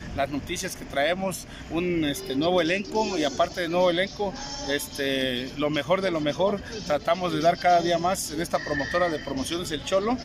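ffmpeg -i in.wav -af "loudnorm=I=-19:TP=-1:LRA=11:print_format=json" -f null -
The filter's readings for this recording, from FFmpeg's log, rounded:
"input_i" : "-25.6",
"input_tp" : "-10.1",
"input_lra" : "2.2",
"input_thresh" : "-35.6",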